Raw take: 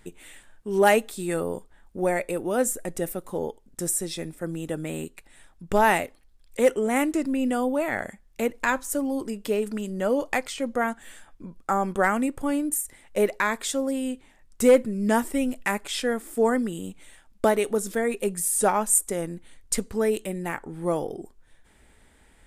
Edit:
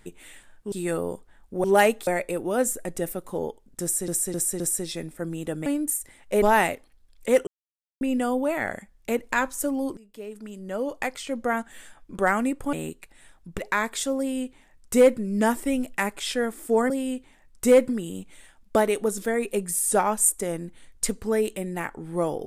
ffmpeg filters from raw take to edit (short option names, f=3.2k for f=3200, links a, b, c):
-filter_complex "[0:a]asplit=17[a][b][c][d][e][f][g][h][i][j][k][l][m][n][o][p][q];[a]atrim=end=0.722[r];[b]atrim=start=1.148:end=2.072[s];[c]atrim=start=0.718:end=1.152[t];[d]atrim=start=2.068:end=4.082[u];[e]atrim=start=3.818:end=4.082[v];[f]atrim=start=3.818:end=4.082[w];[g]atrim=start=3.818:end=4.882[x];[h]atrim=start=12.498:end=13.262[y];[i]atrim=start=5.728:end=6.78,asetpts=PTS-STARTPTS,afade=t=out:st=1.048:d=0.004:c=hsin[z];[j]atrim=start=6.78:end=7.32,asetpts=PTS-STARTPTS,volume=0[aa];[k]atrim=start=7.32:end=9.28,asetpts=PTS-STARTPTS,afade=t=in:d=0.004:c=hsin,afade=t=out:st=1.956:d=0.004:c=hsin:silence=0.0707946[ab];[l]atrim=start=9.28:end=11.462,asetpts=PTS-STARTPTS,afade=t=in:d=1.59:silence=0.0707946[ac];[m]atrim=start=11.918:end=12.502[ad];[n]atrim=start=4.878:end=5.732[ae];[o]atrim=start=13.258:end=16.582[af];[p]atrim=start=13.868:end=14.862[ag];[q]atrim=start=16.578[ah];[r][s]acrossfade=d=0.004:c1=hsin:c2=hsin[ai];[ai][t]acrossfade=d=0.004:c1=hsin:c2=hsin[aj];[aj][u]acrossfade=d=0.004:c1=hsin:c2=hsin[ak];[ak][v]acrossfade=d=0.004:c1=hsin:c2=hsin[al];[al][w]acrossfade=d=0.004:c1=hsin:c2=hsin[am];[am][x]acrossfade=d=0.004:c1=hsin:c2=hsin[an];[an][y]acrossfade=d=0.004:c1=hsin:c2=hsin[ao];[z][aa][ab][ac]concat=n=4:v=0:a=1[ap];[ao][ap]acrossfade=d=0.004:c1=hsin:c2=hsin[aq];[aq][ad]acrossfade=d=0.004:c1=hsin:c2=hsin[ar];[ar][ae]acrossfade=d=0.004:c1=hsin:c2=hsin[as];[as][af]acrossfade=d=0.004:c1=hsin:c2=hsin[at];[at][ag]acrossfade=d=0.004:c1=hsin:c2=hsin[au];[au][ah]acrossfade=d=0.004:c1=hsin:c2=hsin"